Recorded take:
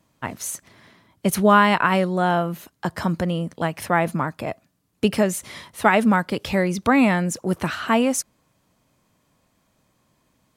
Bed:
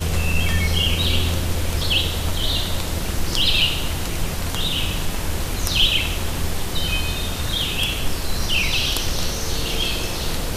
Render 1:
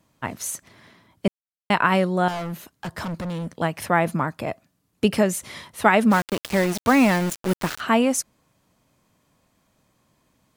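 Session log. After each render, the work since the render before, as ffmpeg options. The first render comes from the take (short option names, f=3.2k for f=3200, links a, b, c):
-filter_complex "[0:a]asettb=1/sr,asplit=3[a][b][c];[a]atrim=end=2.284[d];[b]atrim=start=2.28:end=3.55,asetpts=PTS-STARTPTS,afade=t=in:d=0.004:c=qsin,afade=t=out:st=1.266:d=0.004:c=qsin,asoftclip=type=hard:threshold=-27dB[e];[c]atrim=start=3.546[f];[d][e]acrossfade=d=0.004:c1=hsin:c2=qsin[g];[g][f]acrossfade=d=0.004:c1=qsin:c2=hsin,asplit=3[h][i][j];[h]afade=t=out:st=6.1:d=0.02[k];[i]aeval=exprs='val(0)*gte(abs(val(0)),0.0631)':c=same,afade=t=in:st=6.1:d=0.02,afade=t=out:st=7.79:d=0.02[l];[j]afade=t=in:st=7.79:d=0.02[m];[k][l][m]amix=inputs=3:normalize=0,asplit=3[n][o][p];[n]atrim=end=1.28,asetpts=PTS-STARTPTS,afade=t=out:st=1.276:d=0.004:c=hsin[q];[o]atrim=start=1.28:end=1.7,asetpts=PTS-STARTPTS,volume=0[r];[p]atrim=start=1.7,asetpts=PTS-STARTPTS,afade=t=in:d=0.004:c=hsin[s];[q][r][s]concat=n=3:v=0:a=1"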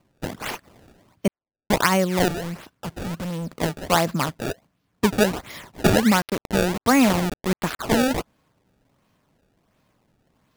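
-af "acrusher=samples=24:mix=1:aa=0.000001:lfo=1:lforange=38.4:lforate=1.4"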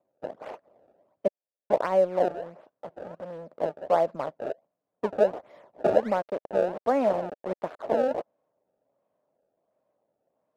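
-filter_complex "[0:a]bandpass=f=590:t=q:w=3.8:csg=0,asplit=2[a][b];[b]aeval=exprs='sgn(val(0))*max(abs(val(0))-0.00891,0)':c=same,volume=-3.5dB[c];[a][c]amix=inputs=2:normalize=0"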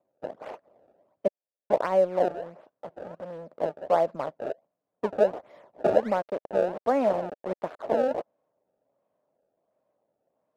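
-af anull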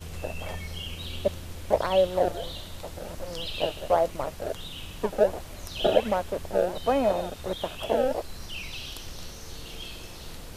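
-filter_complex "[1:a]volume=-17dB[a];[0:a][a]amix=inputs=2:normalize=0"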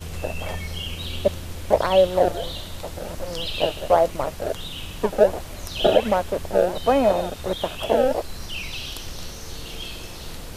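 -af "volume=5.5dB,alimiter=limit=-3dB:level=0:latency=1"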